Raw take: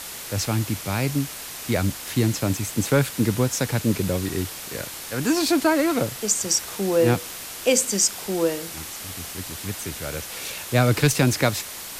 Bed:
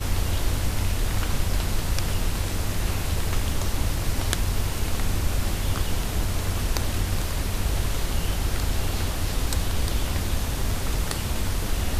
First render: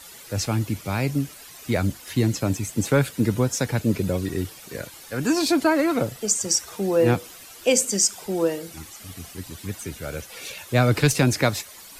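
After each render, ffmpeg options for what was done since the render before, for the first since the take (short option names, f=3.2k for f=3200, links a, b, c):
-af "afftdn=nr=12:nf=-36"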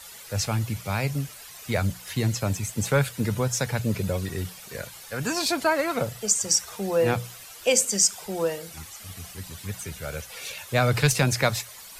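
-af "equalizer=f=300:t=o:w=0.73:g=-11.5,bandreject=f=60:t=h:w=6,bandreject=f=120:t=h:w=6,bandreject=f=180:t=h:w=6"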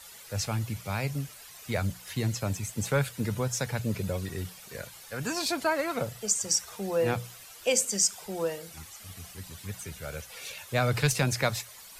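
-af "volume=-4.5dB"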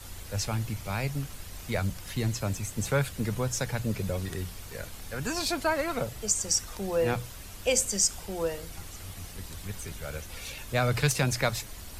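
-filter_complex "[1:a]volume=-19.5dB[a];[0:a][a]amix=inputs=2:normalize=0"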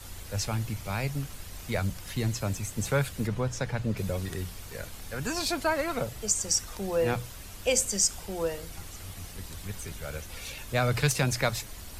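-filter_complex "[0:a]asettb=1/sr,asplit=3[a][b][c];[a]atrim=end=3.274[d];[b]atrim=start=3.27:end=3.97,asetpts=PTS-STARTPTS,afade=t=in:d=0.004:c=qsin,afade=t=out:st=0.696:d=0.004:c=qsin,aemphasis=mode=reproduction:type=50fm[e];[c]atrim=start=3.966[f];[d][e]acrossfade=d=0.004:c1=hsin:c2=qsin[g];[g][f]acrossfade=d=0.004:c1=qsin:c2=hsin"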